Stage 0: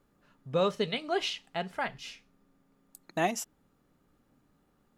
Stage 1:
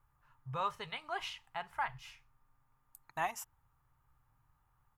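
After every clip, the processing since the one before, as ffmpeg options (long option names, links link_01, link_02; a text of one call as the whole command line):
ffmpeg -i in.wav -af "firequalizer=gain_entry='entry(130,0);entry(180,-25);entry(590,-18);entry(910,1);entry(1400,-5);entry(4000,-15);entry(14000,-3)':delay=0.05:min_phase=1,volume=2dB" out.wav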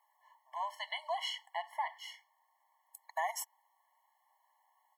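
ffmpeg -i in.wav -af "alimiter=level_in=8.5dB:limit=-24dB:level=0:latency=1:release=117,volume=-8.5dB,afftfilt=real='re*eq(mod(floor(b*sr/1024/570),2),1)':imag='im*eq(mod(floor(b*sr/1024/570),2),1)':win_size=1024:overlap=0.75,volume=8.5dB" out.wav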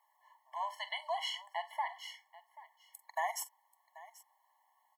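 ffmpeg -i in.wav -af "aecho=1:1:43|47|785:0.15|0.119|0.119" out.wav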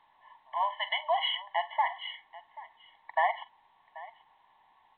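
ffmpeg -i in.wav -af "volume=8.5dB" -ar 8000 -c:a pcm_alaw out.wav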